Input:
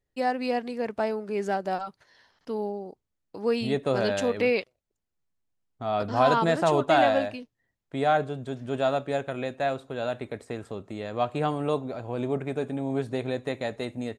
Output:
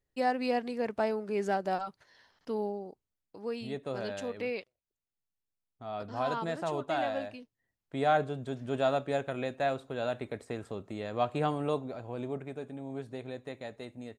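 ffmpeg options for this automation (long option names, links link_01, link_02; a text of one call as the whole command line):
ffmpeg -i in.wav -af "volume=5.5dB,afade=type=out:start_time=2.58:duration=0.93:silence=0.375837,afade=type=in:start_time=7.11:duration=1.07:silence=0.398107,afade=type=out:start_time=11.42:duration=1.18:silence=0.398107" out.wav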